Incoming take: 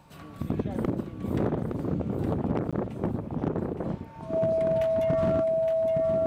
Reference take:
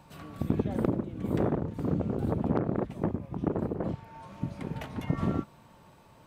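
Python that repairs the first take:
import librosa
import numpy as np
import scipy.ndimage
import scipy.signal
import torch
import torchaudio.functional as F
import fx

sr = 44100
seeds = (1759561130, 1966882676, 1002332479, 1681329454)

y = fx.fix_declip(x, sr, threshold_db=-18.5)
y = fx.notch(y, sr, hz=650.0, q=30.0)
y = fx.fix_interpolate(y, sr, at_s=(2.71,), length_ms=16.0)
y = fx.fix_echo_inverse(y, sr, delay_ms=865, level_db=-6.5)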